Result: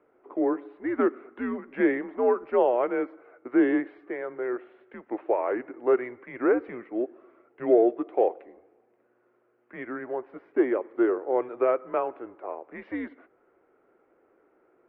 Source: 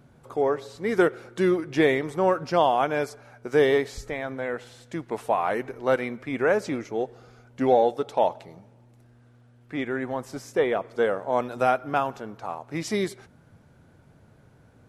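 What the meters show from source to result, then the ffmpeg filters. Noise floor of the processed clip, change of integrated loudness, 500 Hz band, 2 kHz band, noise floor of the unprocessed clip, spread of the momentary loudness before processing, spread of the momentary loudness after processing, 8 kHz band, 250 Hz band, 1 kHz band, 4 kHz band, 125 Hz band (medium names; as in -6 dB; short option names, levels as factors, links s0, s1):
-67 dBFS, -1.5 dB, -1.5 dB, -6.0 dB, -56 dBFS, 12 LU, 14 LU, no reading, +1.5 dB, -6.5 dB, under -20 dB, under -15 dB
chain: -af "lowshelf=f=360:t=q:w=3:g=-10,highpass=f=260:t=q:w=0.5412,highpass=f=260:t=q:w=1.307,lowpass=f=2500:t=q:w=0.5176,lowpass=f=2500:t=q:w=0.7071,lowpass=f=2500:t=q:w=1.932,afreqshift=-120,volume=0.562"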